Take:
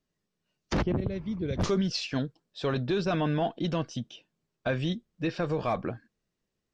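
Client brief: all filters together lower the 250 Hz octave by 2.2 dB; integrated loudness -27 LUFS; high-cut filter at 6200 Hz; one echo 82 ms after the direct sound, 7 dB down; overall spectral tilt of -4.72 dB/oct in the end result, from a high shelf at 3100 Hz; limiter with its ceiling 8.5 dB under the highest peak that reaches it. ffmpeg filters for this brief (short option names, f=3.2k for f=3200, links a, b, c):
-af "lowpass=6.2k,equalizer=f=250:t=o:g=-3.5,highshelf=f=3.1k:g=6.5,alimiter=level_in=1dB:limit=-24dB:level=0:latency=1,volume=-1dB,aecho=1:1:82:0.447,volume=7dB"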